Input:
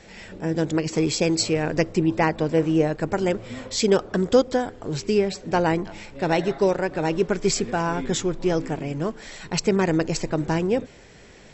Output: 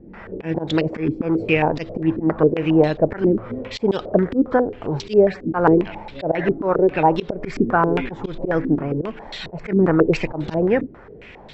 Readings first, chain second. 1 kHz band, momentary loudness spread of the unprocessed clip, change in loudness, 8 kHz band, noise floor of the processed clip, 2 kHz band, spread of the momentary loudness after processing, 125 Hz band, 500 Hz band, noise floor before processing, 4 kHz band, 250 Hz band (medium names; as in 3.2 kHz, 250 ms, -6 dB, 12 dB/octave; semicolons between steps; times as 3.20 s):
+4.5 dB, 8 LU, +3.5 dB, no reading, -42 dBFS, +2.5 dB, 12 LU, +2.5 dB, +3.5 dB, -48 dBFS, -4.5 dB, +4.0 dB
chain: slow attack 118 ms; step-sequenced low-pass 7.4 Hz 300–3700 Hz; trim +3.5 dB